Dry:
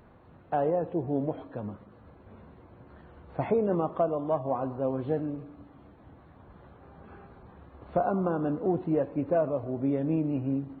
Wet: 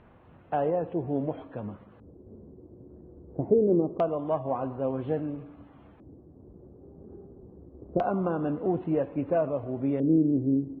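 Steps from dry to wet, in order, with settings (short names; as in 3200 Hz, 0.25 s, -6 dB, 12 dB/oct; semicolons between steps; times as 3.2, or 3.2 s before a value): high shelf 2800 Hz -8 dB; LFO low-pass square 0.25 Hz 380–3000 Hz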